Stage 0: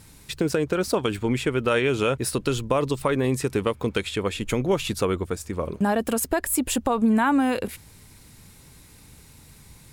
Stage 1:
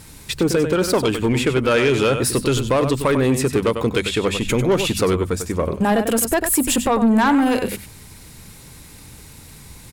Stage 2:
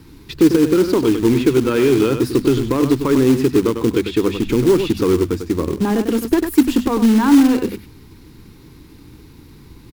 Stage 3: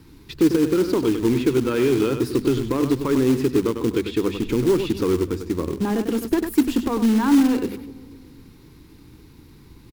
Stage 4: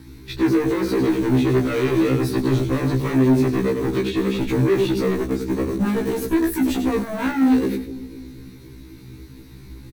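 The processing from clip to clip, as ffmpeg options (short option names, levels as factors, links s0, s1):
-af "bandreject=f=50:t=h:w=6,bandreject=f=100:t=h:w=6,bandreject=f=150:t=h:w=6,bandreject=f=200:t=h:w=6,bandreject=f=250:t=h:w=6,aecho=1:1:97:0.299,asoftclip=type=tanh:threshold=0.119,volume=2.51"
-filter_complex "[0:a]firequalizer=gain_entry='entry(190,0);entry(320,10);entry(610,-12);entry(950,-2);entry(1800,-7);entry(4600,-6);entry(8100,-20);entry(15000,-6)':delay=0.05:min_phase=1,acrossover=split=100|1300|4300[s0][s1][s2][s3];[s1]acrusher=bits=4:mode=log:mix=0:aa=0.000001[s4];[s0][s4][s2][s3]amix=inputs=4:normalize=0"
-filter_complex "[0:a]asplit=2[s0][s1];[s1]adelay=252,lowpass=f=850:p=1,volume=0.119,asplit=2[s2][s3];[s3]adelay=252,lowpass=f=850:p=1,volume=0.49,asplit=2[s4][s5];[s5]adelay=252,lowpass=f=850:p=1,volume=0.49,asplit=2[s6][s7];[s7]adelay=252,lowpass=f=850:p=1,volume=0.49[s8];[s0][s2][s4][s6][s8]amix=inputs=5:normalize=0,volume=0.562"
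-filter_complex "[0:a]asoftclip=type=hard:threshold=0.0708,asplit=2[s0][s1];[s1]adelay=15,volume=0.473[s2];[s0][s2]amix=inputs=2:normalize=0,afftfilt=real='re*1.73*eq(mod(b,3),0)':imag='im*1.73*eq(mod(b,3),0)':win_size=2048:overlap=0.75,volume=2"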